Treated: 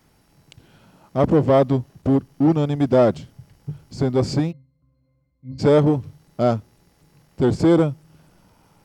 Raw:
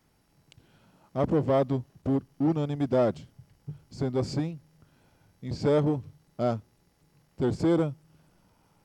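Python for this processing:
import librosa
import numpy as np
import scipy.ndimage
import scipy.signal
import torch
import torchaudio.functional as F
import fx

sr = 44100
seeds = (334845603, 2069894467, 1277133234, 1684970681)

y = fx.octave_resonator(x, sr, note='C', decay_s=0.36, at=(4.51, 5.58), fade=0.02)
y = y * 10.0 ** (8.5 / 20.0)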